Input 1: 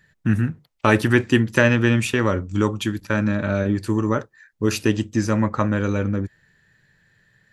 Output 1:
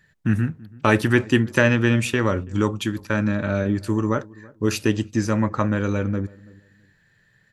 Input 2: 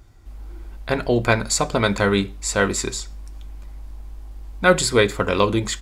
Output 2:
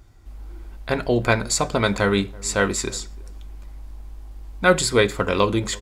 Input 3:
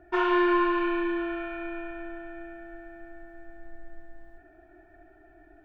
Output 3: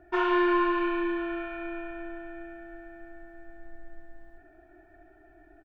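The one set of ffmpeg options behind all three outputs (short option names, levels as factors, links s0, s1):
-filter_complex "[0:a]asplit=2[s0][s1];[s1]adelay=331,lowpass=f=840:p=1,volume=0.0794,asplit=2[s2][s3];[s3]adelay=331,lowpass=f=840:p=1,volume=0.25[s4];[s0][s2][s4]amix=inputs=3:normalize=0,volume=0.891"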